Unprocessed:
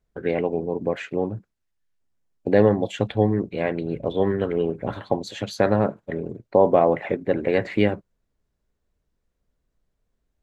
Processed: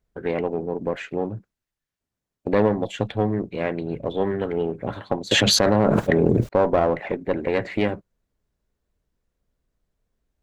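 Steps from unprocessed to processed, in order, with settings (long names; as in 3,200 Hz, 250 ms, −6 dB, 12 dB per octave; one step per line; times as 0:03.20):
one-sided soft clipper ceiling −15.5 dBFS
0:05.31–0:06.49: envelope flattener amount 100%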